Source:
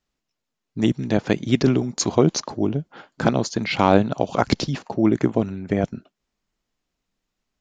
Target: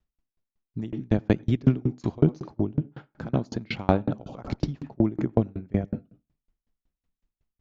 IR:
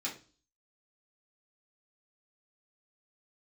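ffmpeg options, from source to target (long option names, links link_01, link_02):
-filter_complex "[0:a]aemphasis=mode=reproduction:type=bsi,asplit=2[link_01][link_02];[1:a]atrim=start_sample=2205,lowpass=2200,adelay=84[link_03];[link_02][link_03]afir=irnorm=-1:irlink=0,volume=-13.5dB[link_04];[link_01][link_04]amix=inputs=2:normalize=0,aeval=exprs='val(0)*pow(10,-32*if(lt(mod(5.4*n/s,1),2*abs(5.4)/1000),1-mod(5.4*n/s,1)/(2*abs(5.4)/1000),(mod(5.4*n/s,1)-2*abs(5.4)/1000)/(1-2*abs(5.4)/1000))/20)':channel_layout=same,volume=-2dB"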